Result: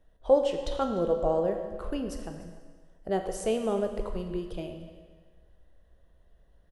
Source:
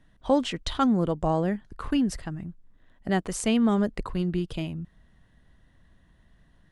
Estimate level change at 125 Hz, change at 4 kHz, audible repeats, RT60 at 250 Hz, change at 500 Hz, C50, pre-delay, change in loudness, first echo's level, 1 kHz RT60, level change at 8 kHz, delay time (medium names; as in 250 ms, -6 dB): -10.0 dB, -8.0 dB, 1, 1.5 s, +3.0 dB, 6.5 dB, 14 ms, -3.0 dB, -19.5 dB, 1.5 s, -7.0 dB, 298 ms